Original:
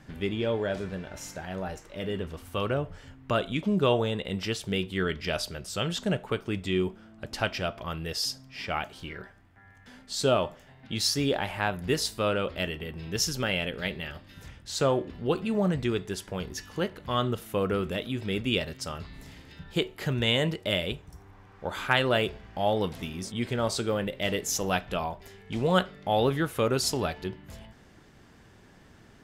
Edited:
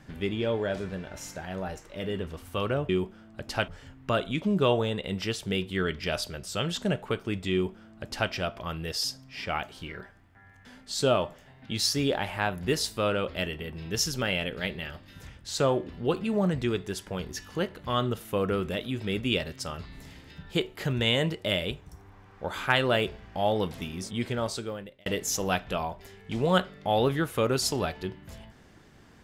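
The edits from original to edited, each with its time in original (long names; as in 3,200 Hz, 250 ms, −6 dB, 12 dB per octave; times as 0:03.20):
0:06.73–0:07.52: duplicate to 0:02.89
0:23.45–0:24.27: fade out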